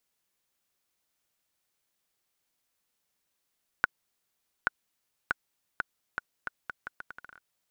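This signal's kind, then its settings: bouncing ball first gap 0.83 s, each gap 0.77, 1.47 kHz, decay 19 ms -8 dBFS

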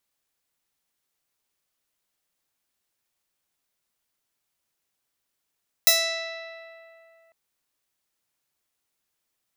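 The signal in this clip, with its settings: plucked string E5, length 1.45 s, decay 2.74 s, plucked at 0.42, bright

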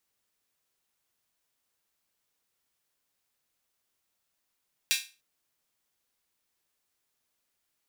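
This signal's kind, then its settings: open hi-hat length 0.30 s, high-pass 2.6 kHz, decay 0.31 s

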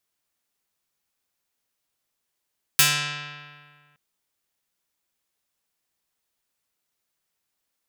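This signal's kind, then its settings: plucked string D3, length 1.17 s, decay 1.87 s, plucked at 0.48, medium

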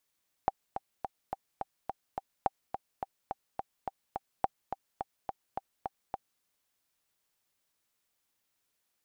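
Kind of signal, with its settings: metronome 212 bpm, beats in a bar 7, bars 3, 781 Hz, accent 8.5 dB -12.5 dBFS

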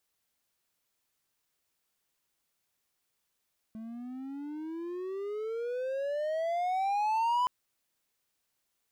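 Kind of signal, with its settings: gliding synth tone triangle, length 3.72 s, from 218 Hz, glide +26.5 st, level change +15 dB, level -22.5 dB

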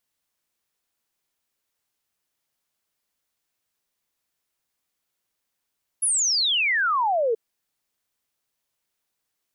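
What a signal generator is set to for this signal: log sweep 11 kHz -> 430 Hz 1.33 s -19 dBFS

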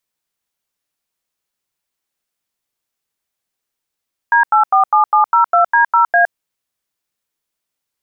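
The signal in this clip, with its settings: DTMF "D847702D0A", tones 114 ms, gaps 88 ms, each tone -10.5 dBFS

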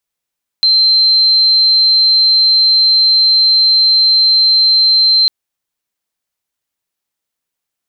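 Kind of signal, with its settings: tone sine 4.12 kHz -6.5 dBFS 4.65 s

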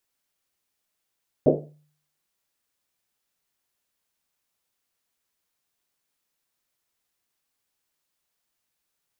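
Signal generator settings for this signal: Risset drum, pitch 150 Hz, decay 0.59 s, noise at 440 Hz, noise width 370 Hz, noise 75%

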